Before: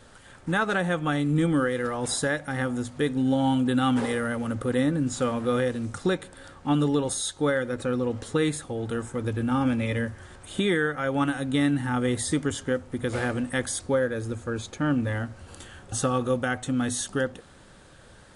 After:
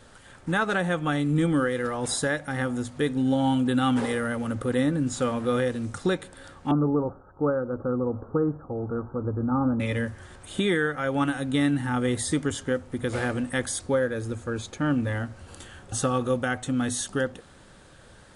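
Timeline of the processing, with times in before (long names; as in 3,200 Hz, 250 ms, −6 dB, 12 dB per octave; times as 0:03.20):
0:06.71–0:09.80: Butterworth low-pass 1,400 Hz 72 dB per octave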